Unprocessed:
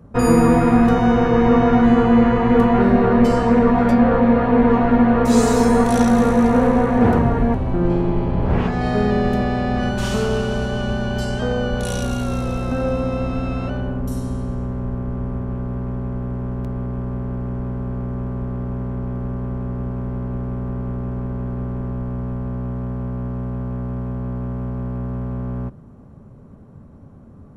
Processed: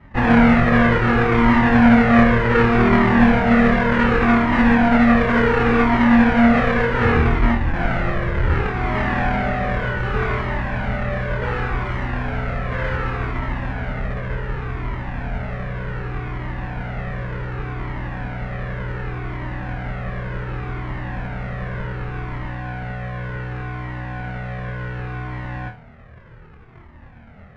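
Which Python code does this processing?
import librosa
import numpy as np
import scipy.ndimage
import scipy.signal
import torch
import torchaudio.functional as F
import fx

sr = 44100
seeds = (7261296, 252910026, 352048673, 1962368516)

p1 = fx.halfwave_hold(x, sr)
p2 = fx.lowpass_res(p1, sr, hz=1900.0, q=2.2)
p3 = p2 + fx.room_flutter(p2, sr, wall_m=4.4, rt60_s=0.3, dry=0)
p4 = fx.comb_cascade(p3, sr, direction='falling', hz=0.67)
y = p4 * librosa.db_to_amplitude(-3.5)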